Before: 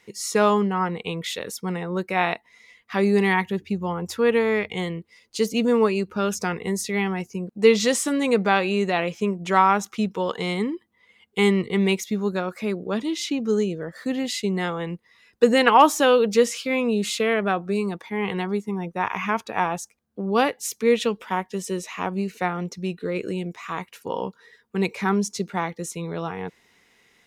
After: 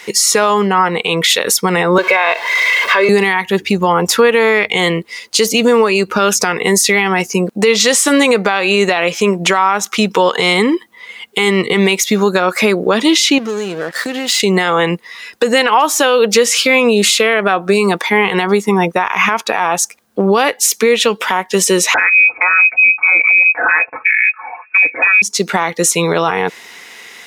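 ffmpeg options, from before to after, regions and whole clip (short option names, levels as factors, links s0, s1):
-filter_complex "[0:a]asettb=1/sr,asplit=3[s0][s1][s2];[s0]atrim=end=1.984[s3];[s1]atrim=start=1.98:end=3.09,asetpts=PTS-STARTPTS,afade=t=in:d=0.004:c=qsin,afade=t=out:st=1.106:d=0.004:c=qsin,aeval=exprs='val(0)+0.5*0.0178*sgn(val(0))':c=same,acrossover=split=330 4100:gain=0.1 1 0.126[s4][s5][s6];[s4][s5][s6]amix=inputs=3:normalize=0,aecho=1:1:1.9:0.76,atrim=end_sample=48951[s7];[s2]atrim=start=3.086[s8];[s3][s7]acrossfade=d=0.004:c1=hsin:c2=qsin[s9];[s9][s8]acrossfade=d=0.004:c1=qsin:c2=hsin,asettb=1/sr,asplit=3[s10][s11][s12];[s10]atrim=end=13.384[s13];[s11]atrim=start=13.38:end=14.4,asetpts=PTS-STARTPTS,afade=t=in:d=0.004:c=qsin,afade=t=out:st=1.016:d=0.004:c=qsin,acompressor=threshold=0.02:ratio=8:attack=3.2:release=140:knee=1:detection=peak,aeval=exprs='sgn(val(0))*max(abs(val(0))-0.00266,0)':c=same[s14];[s12]atrim=start=14.396[s15];[s13][s14]acrossfade=d=0.004:c1=hsin:c2=qsin[s16];[s16][s15]acrossfade=d=0.004:c1=qsin:c2=hsin,asettb=1/sr,asplit=3[s17][s18][s19];[s17]atrim=end=21.944[s20];[s18]atrim=start=21.94:end=25.22,asetpts=PTS-STARTPTS,afade=t=in:d=0.004:c=qsin,afade=t=out:st=3.276:d=0.004:c=qsin,aecho=1:1:5:0.95,atrim=end_sample=144648,lowpass=f=2300:t=q:w=0.5098,lowpass=f=2300:t=q:w=0.6013,lowpass=f=2300:t=q:w=0.9,lowpass=f=2300:t=q:w=2.563,afreqshift=-2700[s21];[s19]atrim=start=25.216[s22];[s20][s21]acrossfade=d=0.004:c1=hsin:c2=qsin[s23];[s23][s22]acrossfade=d=0.004:c1=qsin:c2=hsin,highpass=f=740:p=1,acompressor=threshold=0.0251:ratio=5,alimiter=level_in=21.1:limit=0.891:release=50:level=0:latency=1,volume=0.891"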